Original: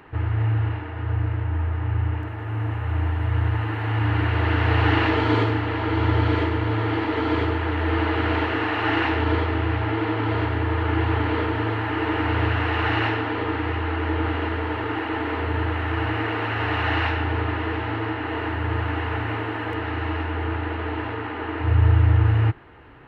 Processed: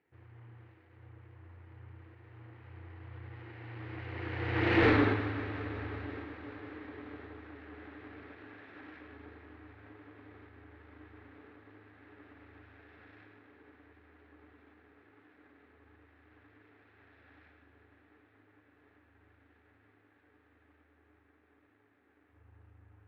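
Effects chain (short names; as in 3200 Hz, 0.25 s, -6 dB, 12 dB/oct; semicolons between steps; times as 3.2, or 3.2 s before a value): minimum comb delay 0.48 ms; Doppler pass-by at 4.87, 21 m/s, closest 1.4 m; HPF 230 Hz 6 dB/oct; notch 630 Hz, Q 12; in parallel at 0 dB: compressor, threshold -60 dBFS, peak gain reduction 34.5 dB; on the sum: overloaded stage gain 25 dB; air absorption 370 m; multi-head echo 0.182 s, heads first and second, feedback 73%, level -20.5 dB; gain +6.5 dB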